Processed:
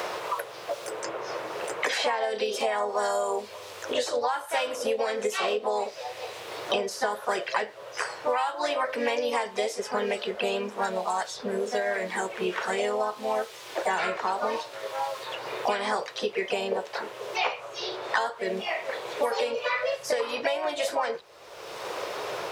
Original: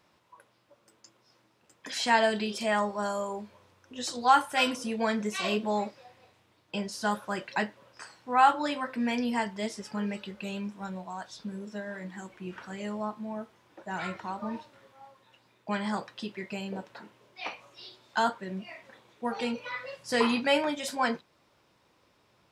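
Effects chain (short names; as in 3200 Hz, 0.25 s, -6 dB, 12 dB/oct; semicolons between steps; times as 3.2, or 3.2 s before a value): resonant low shelf 330 Hz -9.5 dB, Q 3; compressor 10:1, threshold -29 dBFS, peak gain reduction 15.5 dB; harmoniser +3 st -6 dB; three-band squash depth 100%; gain +6 dB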